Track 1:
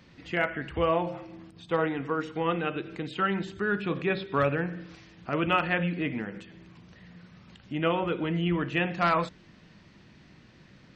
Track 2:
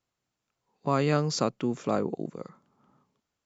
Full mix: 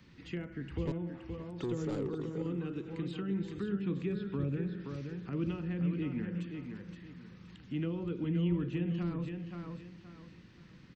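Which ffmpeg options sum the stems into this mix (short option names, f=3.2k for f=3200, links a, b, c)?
-filter_complex "[0:a]lowshelf=f=380:g=3.5,acrossover=split=460[a][b];[b]acompressor=threshold=-42dB:ratio=4[c];[a][c]amix=inputs=2:normalize=0,equalizer=f=650:t=o:w=0.57:g=-9.5,volume=-5dB,asplit=2[d][e];[e]volume=-7dB[f];[1:a]tiltshelf=f=970:g=4,aecho=1:1:2.3:0.54,asoftclip=type=tanh:threshold=-26.5dB,volume=-3dB,asplit=3[g][h][i];[g]atrim=end=0.92,asetpts=PTS-STARTPTS,afade=t=out:st=0.916:d=0.004:c=hsin[j];[h]atrim=start=0.92:end=1.54,asetpts=PTS-STARTPTS,volume=0[k];[i]atrim=start=1.54,asetpts=PTS-STARTPTS,afade=t=in:d=0.004:c=hsin[l];[j][k][l]concat=n=3:v=0:a=1,asplit=2[m][n];[n]volume=-19dB[o];[f][o]amix=inputs=2:normalize=0,aecho=0:1:522|1044|1566|2088:1|0.29|0.0841|0.0244[p];[d][m][p]amix=inputs=3:normalize=0,acrossover=split=460|3000[q][r][s];[r]acompressor=threshold=-48dB:ratio=6[t];[q][t][s]amix=inputs=3:normalize=0"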